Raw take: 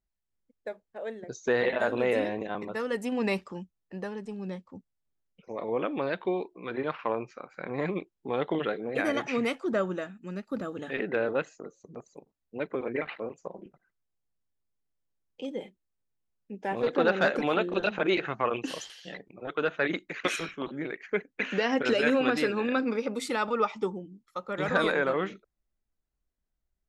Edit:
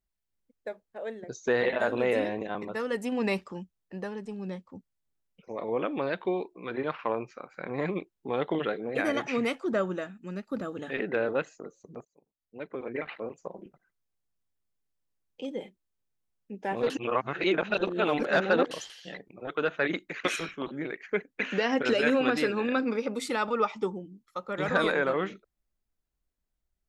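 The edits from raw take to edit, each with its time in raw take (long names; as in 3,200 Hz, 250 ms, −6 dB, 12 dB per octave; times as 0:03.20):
0:12.05–0:13.35: fade in, from −23.5 dB
0:16.90–0:18.71: reverse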